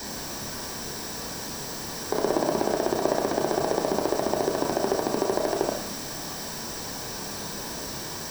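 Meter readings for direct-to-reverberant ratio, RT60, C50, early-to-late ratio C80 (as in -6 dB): 1.5 dB, no single decay rate, 6.0 dB, 9.5 dB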